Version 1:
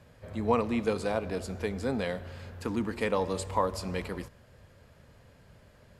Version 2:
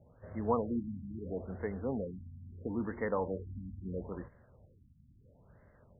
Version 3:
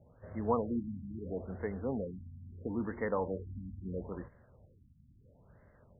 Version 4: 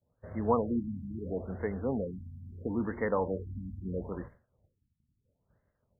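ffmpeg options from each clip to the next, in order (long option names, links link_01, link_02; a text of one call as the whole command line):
ffmpeg -i in.wav -af "afftfilt=real='re*lt(b*sr/1024,260*pow(2200/260,0.5+0.5*sin(2*PI*0.75*pts/sr)))':imag='im*lt(b*sr/1024,260*pow(2200/260,0.5+0.5*sin(2*PI*0.75*pts/sr)))':win_size=1024:overlap=0.75,volume=-4.5dB" out.wav
ffmpeg -i in.wav -af anull out.wav
ffmpeg -i in.wav -af "agate=range=-33dB:threshold=-49dB:ratio=3:detection=peak,volume=3.5dB" out.wav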